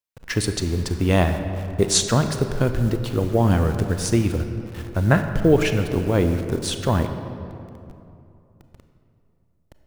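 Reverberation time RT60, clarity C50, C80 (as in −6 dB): 2.8 s, 8.0 dB, 8.5 dB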